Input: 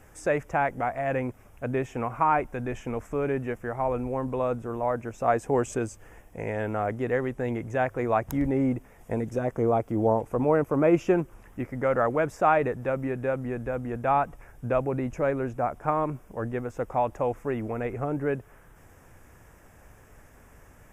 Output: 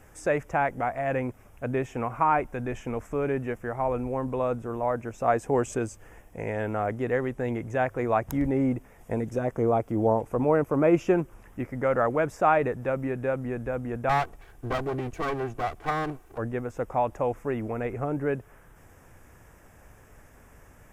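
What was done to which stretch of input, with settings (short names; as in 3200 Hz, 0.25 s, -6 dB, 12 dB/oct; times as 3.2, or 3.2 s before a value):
14.09–16.38 minimum comb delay 2.6 ms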